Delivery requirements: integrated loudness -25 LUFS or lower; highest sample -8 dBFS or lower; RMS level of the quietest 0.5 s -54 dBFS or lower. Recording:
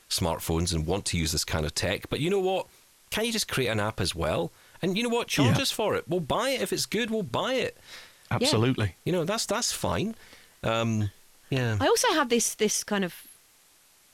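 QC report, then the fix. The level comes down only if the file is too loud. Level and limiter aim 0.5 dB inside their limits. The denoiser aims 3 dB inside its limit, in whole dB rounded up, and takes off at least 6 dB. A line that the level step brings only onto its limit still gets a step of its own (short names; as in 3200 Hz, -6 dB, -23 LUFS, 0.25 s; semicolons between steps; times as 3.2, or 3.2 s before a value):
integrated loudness -27.0 LUFS: OK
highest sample -11.5 dBFS: OK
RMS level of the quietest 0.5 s -60 dBFS: OK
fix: none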